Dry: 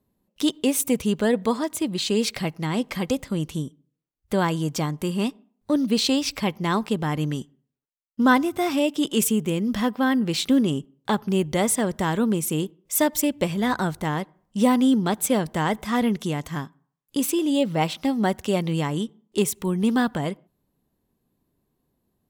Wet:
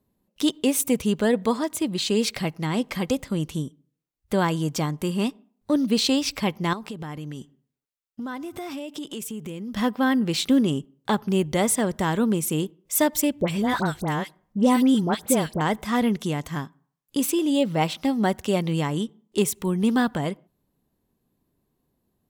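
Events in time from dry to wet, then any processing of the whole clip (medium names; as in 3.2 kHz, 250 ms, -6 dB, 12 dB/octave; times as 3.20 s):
6.73–9.77 s: compression, threshold -31 dBFS
13.41–15.61 s: phase dispersion highs, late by 72 ms, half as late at 1.5 kHz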